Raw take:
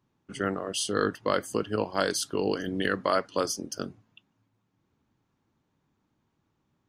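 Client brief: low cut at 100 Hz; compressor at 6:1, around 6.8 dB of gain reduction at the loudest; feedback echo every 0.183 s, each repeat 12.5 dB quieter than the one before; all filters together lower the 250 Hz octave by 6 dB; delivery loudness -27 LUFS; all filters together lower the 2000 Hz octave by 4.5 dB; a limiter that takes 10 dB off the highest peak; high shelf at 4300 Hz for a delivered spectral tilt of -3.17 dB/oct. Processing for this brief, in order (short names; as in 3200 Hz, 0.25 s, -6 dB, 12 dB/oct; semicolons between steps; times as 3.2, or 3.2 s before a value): HPF 100 Hz; bell 250 Hz -8 dB; bell 2000 Hz -5 dB; high shelf 4300 Hz -6.5 dB; compressor 6:1, threshold -30 dBFS; limiter -28 dBFS; feedback echo 0.183 s, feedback 24%, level -12.5 dB; gain +13 dB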